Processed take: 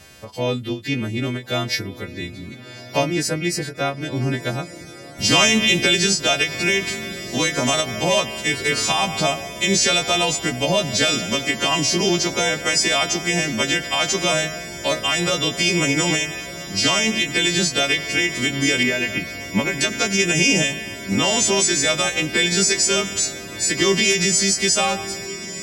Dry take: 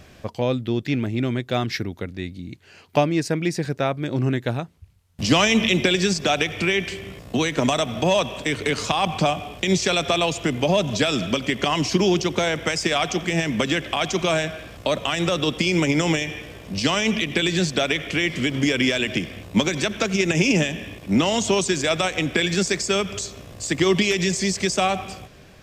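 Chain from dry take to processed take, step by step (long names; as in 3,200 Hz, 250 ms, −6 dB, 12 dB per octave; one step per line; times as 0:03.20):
every partial snapped to a pitch grid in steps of 2 semitones
0:18.83–0:19.81: flat-topped bell 5,400 Hz −15.5 dB
on a send: feedback delay with all-pass diffusion 1,339 ms, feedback 64%, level −15.5 dB
on the sum: every ending faded ahead of time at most 210 dB per second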